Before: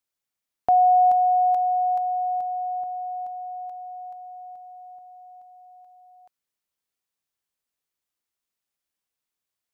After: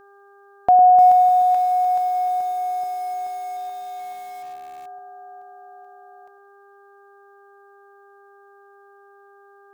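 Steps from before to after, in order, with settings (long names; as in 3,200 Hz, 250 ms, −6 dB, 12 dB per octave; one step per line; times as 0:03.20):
feedback echo with a band-pass in the loop 105 ms, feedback 41%, band-pass 320 Hz, level −7.5 dB
hum with harmonics 400 Hz, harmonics 4, −55 dBFS −3 dB per octave
feedback echo at a low word length 301 ms, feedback 35%, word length 7 bits, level −9 dB
level +4.5 dB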